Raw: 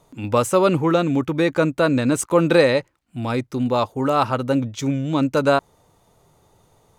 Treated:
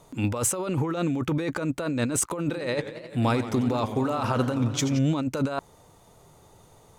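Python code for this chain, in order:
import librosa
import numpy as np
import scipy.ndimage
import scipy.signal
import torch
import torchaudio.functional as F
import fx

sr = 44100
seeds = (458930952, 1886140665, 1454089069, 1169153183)

y = fx.peak_eq(x, sr, hz=8100.0, db=2.5, octaves=0.77)
y = fx.over_compress(y, sr, threshold_db=-24.0, ratio=-1.0)
y = fx.echo_warbled(y, sr, ms=88, feedback_pct=77, rate_hz=2.8, cents=174, wet_db=-12.5, at=(2.44, 4.99))
y = y * librosa.db_to_amplitude(-2.0)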